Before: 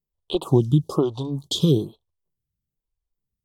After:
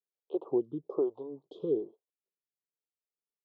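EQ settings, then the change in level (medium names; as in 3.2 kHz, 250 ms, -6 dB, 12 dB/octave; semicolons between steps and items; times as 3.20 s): ladder band-pass 500 Hz, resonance 50%; distance through air 51 m; 0.0 dB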